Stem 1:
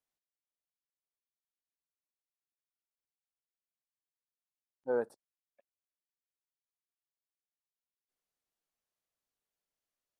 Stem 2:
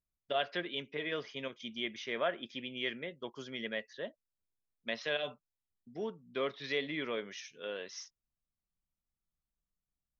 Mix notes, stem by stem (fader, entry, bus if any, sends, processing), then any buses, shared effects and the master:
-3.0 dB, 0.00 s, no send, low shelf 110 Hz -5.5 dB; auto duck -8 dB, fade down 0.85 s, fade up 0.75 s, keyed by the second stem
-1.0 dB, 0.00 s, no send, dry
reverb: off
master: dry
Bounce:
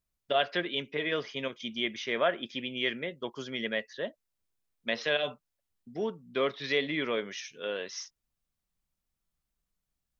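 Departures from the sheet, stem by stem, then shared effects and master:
stem 1 -3.0 dB -> -12.5 dB; stem 2 -1.0 dB -> +6.0 dB

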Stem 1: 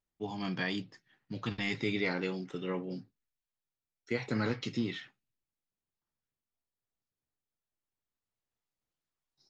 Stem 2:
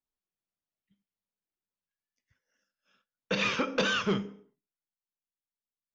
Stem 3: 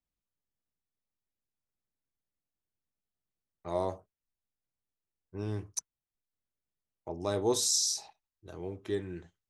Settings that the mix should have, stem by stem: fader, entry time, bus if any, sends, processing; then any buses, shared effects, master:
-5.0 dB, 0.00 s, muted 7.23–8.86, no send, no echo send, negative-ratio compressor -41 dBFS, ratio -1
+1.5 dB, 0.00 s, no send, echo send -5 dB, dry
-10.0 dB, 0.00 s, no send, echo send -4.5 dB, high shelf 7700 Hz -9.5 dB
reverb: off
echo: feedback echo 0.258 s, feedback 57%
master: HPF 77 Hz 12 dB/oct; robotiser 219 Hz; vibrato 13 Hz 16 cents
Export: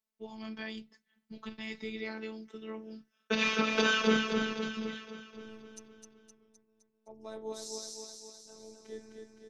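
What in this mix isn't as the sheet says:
stem 1: missing negative-ratio compressor -41 dBFS, ratio -1; master: missing vibrato 13 Hz 16 cents

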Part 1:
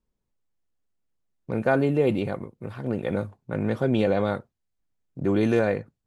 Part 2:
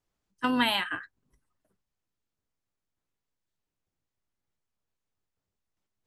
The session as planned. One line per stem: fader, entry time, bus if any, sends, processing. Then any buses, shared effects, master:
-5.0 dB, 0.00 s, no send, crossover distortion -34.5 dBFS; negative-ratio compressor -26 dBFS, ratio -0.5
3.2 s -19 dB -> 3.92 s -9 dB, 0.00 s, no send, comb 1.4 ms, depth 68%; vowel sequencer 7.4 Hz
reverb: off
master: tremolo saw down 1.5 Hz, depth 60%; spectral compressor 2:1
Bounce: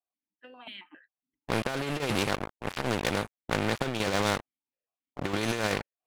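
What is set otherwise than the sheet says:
stem 1 -5.0 dB -> +3.0 dB; stem 2: missing comb 1.4 ms, depth 68%

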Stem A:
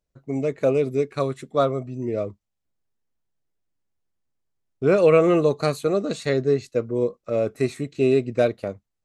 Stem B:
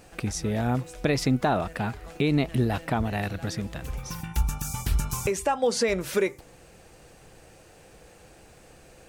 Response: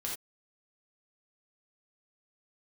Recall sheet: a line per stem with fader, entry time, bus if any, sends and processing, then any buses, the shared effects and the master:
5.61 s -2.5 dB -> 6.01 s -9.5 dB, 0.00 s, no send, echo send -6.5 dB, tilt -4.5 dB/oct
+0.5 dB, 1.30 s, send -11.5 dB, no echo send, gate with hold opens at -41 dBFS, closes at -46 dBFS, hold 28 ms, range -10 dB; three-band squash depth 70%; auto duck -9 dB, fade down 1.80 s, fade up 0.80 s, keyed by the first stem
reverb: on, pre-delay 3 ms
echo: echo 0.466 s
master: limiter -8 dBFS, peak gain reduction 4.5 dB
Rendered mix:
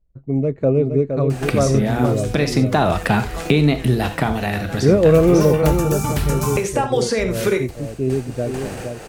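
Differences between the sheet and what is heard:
stem B +0.5 dB -> +10.5 dB; master: missing limiter -8 dBFS, peak gain reduction 4.5 dB

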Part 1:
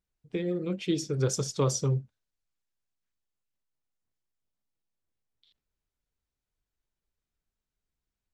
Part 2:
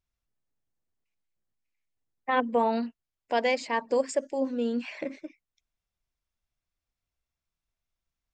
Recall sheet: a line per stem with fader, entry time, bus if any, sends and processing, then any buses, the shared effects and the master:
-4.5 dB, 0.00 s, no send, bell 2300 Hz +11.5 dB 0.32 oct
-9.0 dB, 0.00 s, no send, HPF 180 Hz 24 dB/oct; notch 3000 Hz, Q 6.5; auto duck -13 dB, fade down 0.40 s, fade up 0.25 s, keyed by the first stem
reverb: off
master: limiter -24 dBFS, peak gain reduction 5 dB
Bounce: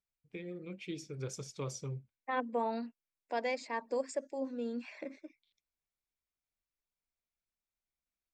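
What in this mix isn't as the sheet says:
stem 1 -4.5 dB -> -13.5 dB; master: missing limiter -24 dBFS, peak gain reduction 5 dB

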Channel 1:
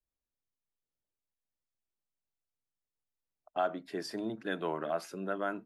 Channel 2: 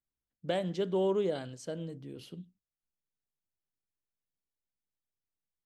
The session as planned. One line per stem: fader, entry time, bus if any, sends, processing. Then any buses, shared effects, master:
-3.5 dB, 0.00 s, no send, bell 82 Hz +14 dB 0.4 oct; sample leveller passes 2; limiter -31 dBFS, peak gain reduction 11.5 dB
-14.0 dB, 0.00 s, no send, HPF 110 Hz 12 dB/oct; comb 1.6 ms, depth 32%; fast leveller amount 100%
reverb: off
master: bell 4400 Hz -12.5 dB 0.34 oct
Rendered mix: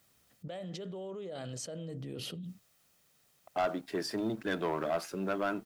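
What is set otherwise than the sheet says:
stem 1: missing limiter -31 dBFS, peak gain reduction 11.5 dB; master: missing bell 4400 Hz -12.5 dB 0.34 oct

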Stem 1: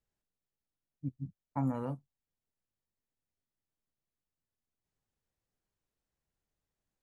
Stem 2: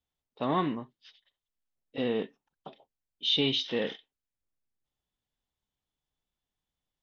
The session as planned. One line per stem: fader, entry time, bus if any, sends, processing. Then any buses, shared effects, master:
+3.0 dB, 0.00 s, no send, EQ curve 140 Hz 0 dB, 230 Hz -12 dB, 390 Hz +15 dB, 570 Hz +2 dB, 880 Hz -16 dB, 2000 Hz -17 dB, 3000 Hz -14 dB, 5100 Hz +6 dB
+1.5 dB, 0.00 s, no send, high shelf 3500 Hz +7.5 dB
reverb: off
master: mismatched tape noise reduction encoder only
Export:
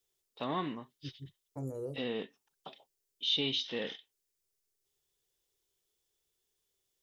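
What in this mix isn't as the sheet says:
stem 1 +3.0 dB -> -6.5 dB; stem 2 +1.5 dB -> -7.5 dB

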